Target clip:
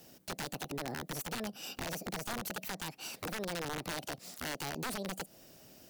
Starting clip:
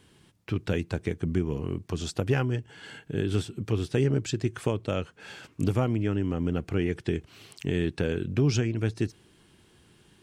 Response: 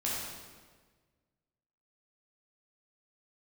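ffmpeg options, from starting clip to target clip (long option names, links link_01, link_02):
-filter_complex "[0:a]aemphasis=mode=production:type=50fm,acrossover=split=150|780[link_01][link_02][link_03];[link_01]alimiter=level_in=8.5dB:limit=-24dB:level=0:latency=1,volume=-8.5dB[link_04];[link_04][link_02][link_03]amix=inputs=3:normalize=0,acompressor=threshold=-36dB:ratio=4,aeval=exprs='(mod(33.5*val(0)+1,2)-1)/33.5':channel_layout=same,asetrate=76440,aresample=44100"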